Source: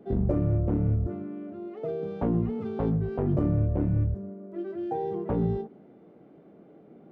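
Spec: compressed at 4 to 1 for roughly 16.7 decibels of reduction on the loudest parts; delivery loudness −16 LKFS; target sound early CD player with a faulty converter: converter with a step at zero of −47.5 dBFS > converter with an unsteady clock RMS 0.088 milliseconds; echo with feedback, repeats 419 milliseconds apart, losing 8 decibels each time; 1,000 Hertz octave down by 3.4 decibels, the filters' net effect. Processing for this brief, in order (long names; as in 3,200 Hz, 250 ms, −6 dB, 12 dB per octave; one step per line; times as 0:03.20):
parametric band 1,000 Hz −5 dB
downward compressor 4 to 1, threshold −42 dBFS
repeating echo 419 ms, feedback 40%, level −8 dB
converter with a step at zero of −47.5 dBFS
converter with an unsteady clock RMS 0.088 ms
level +25.5 dB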